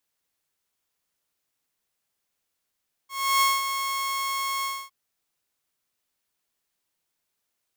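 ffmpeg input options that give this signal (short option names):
-f lavfi -i "aevalsrc='0.178*(2*mod(1090*t,1)-1)':d=1.808:s=44100,afade=t=in:d=0.324,afade=t=out:st=0.324:d=0.198:silence=0.376,afade=t=out:st=1.55:d=0.258"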